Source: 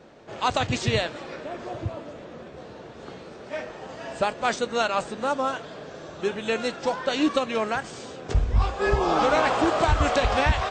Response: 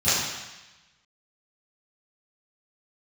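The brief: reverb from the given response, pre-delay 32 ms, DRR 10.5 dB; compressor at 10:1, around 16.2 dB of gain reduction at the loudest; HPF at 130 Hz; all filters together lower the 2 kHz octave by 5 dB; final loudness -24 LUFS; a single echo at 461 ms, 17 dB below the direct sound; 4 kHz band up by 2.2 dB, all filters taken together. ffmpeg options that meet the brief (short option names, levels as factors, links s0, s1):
-filter_complex "[0:a]highpass=130,equalizer=f=2000:t=o:g=-8.5,equalizer=f=4000:t=o:g=5.5,acompressor=threshold=0.0178:ratio=10,aecho=1:1:461:0.141,asplit=2[s0][s1];[1:a]atrim=start_sample=2205,adelay=32[s2];[s1][s2]afir=irnorm=-1:irlink=0,volume=0.0422[s3];[s0][s3]amix=inputs=2:normalize=0,volume=5.62"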